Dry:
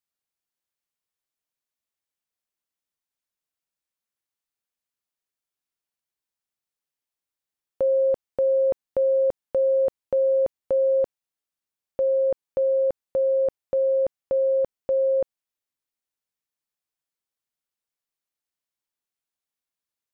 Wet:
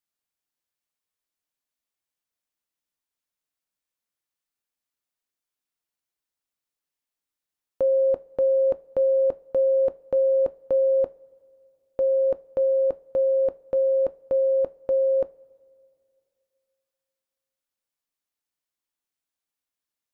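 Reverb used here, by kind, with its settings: two-slope reverb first 0.22 s, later 2.5 s, from -22 dB, DRR 12 dB

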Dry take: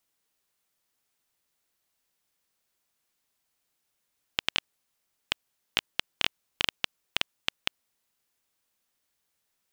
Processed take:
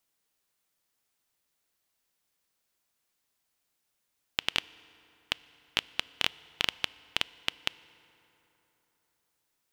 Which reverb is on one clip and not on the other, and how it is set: FDN reverb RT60 3.7 s, high-frequency decay 0.55×, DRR 19 dB; trim -1 dB

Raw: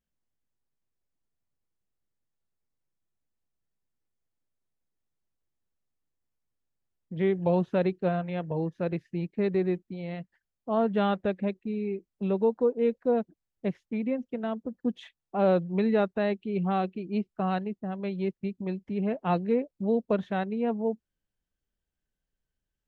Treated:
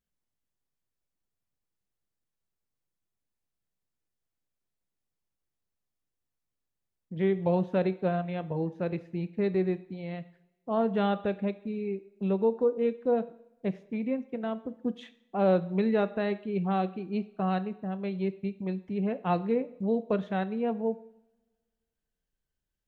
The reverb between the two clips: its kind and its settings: two-slope reverb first 0.61 s, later 1.6 s, from -19 dB, DRR 12.5 dB; trim -1.5 dB

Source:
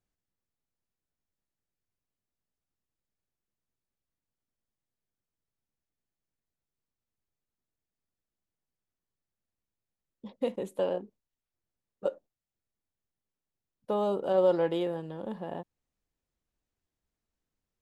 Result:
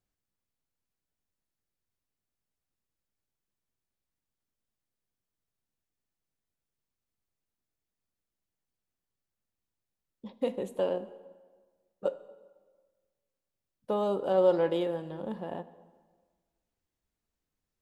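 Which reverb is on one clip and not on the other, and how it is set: plate-style reverb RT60 1.5 s, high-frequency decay 0.75×, DRR 13.5 dB

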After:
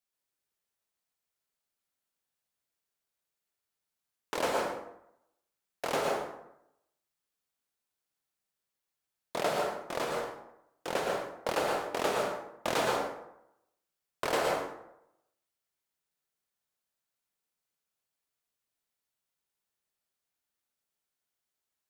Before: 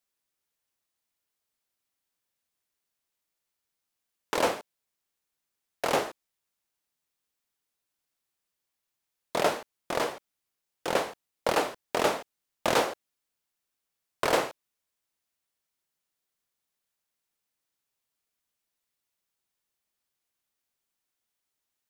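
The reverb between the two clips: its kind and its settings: plate-style reverb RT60 0.82 s, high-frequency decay 0.55×, pre-delay 100 ms, DRR -0.5 dB; trim -6 dB

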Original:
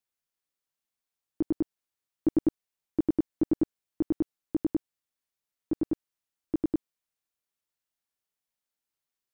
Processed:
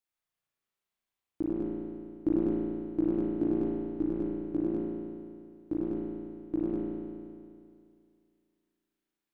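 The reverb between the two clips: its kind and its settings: spring tank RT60 2.3 s, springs 35 ms, chirp 35 ms, DRR -5.5 dB; trim -4 dB

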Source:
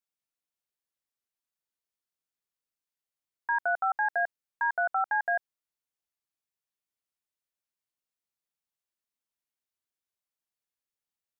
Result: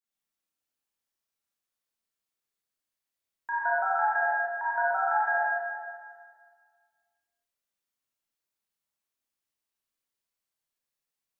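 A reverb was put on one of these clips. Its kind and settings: Schroeder reverb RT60 1.8 s, combs from 28 ms, DRR -8.5 dB; trim -5.5 dB

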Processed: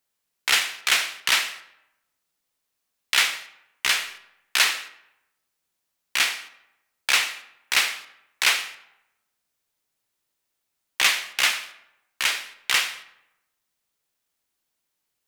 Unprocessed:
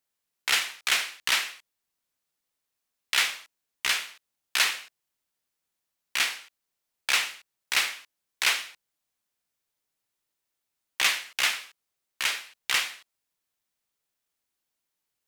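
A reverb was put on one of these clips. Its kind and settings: algorithmic reverb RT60 0.89 s, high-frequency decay 0.65×, pre-delay 35 ms, DRR 15 dB; trim +4 dB

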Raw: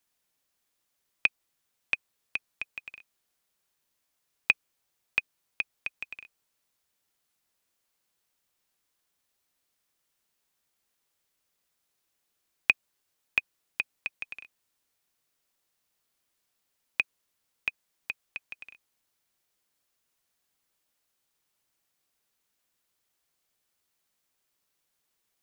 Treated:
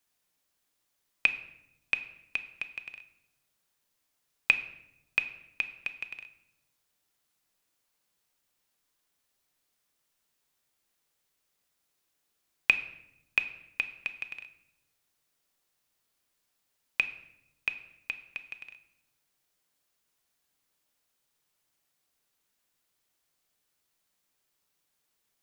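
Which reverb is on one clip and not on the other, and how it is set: simulated room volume 280 m³, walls mixed, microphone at 0.39 m

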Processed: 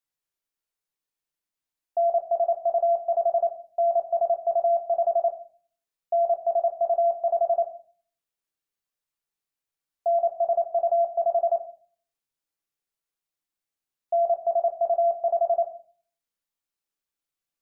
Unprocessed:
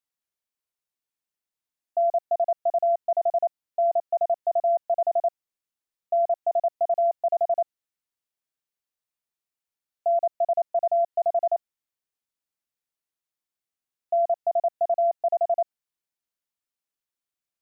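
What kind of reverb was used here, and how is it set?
simulated room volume 34 m³, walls mixed, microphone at 0.38 m; trim -1 dB

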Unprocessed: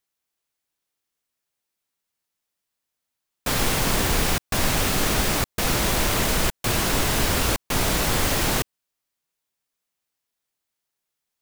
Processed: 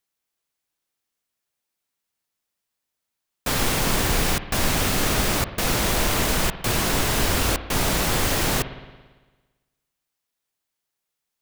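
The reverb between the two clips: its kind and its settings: spring tank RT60 1.3 s, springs 56 ms, chirp 55 ms, DRR 11.5 dB

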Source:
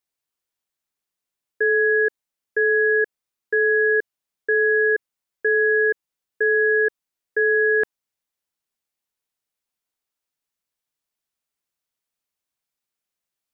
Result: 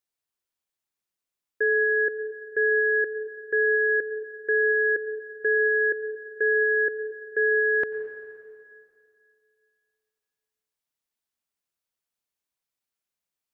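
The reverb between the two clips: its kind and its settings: plate-style reverb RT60 2.4 s, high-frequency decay 0.95×, pre-delay 80 ms, DRR 9.5 dB; trim -3.5 dB

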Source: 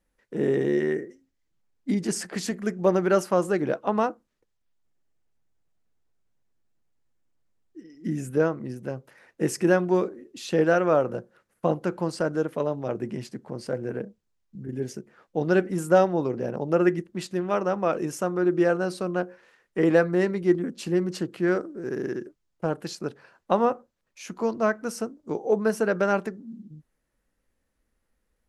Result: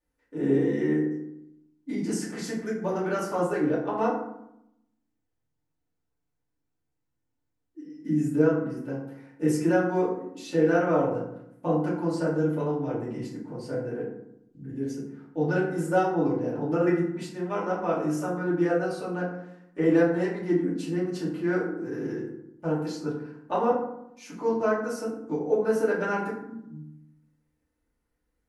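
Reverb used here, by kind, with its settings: FDN reverb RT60 0.78 s, low-frequency decay 1.4×, high-frequency decay 0.5×, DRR -8.5 dB; trim -12 dB

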